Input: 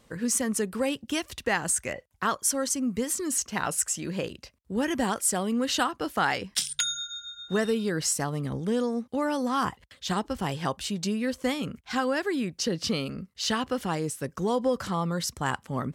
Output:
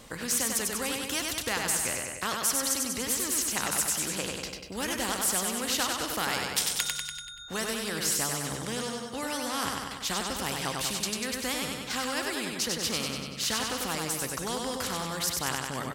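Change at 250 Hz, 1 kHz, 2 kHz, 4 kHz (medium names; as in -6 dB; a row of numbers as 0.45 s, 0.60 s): -7.5 dB, -3.0 dB, 0.0 dB, +2.5 dB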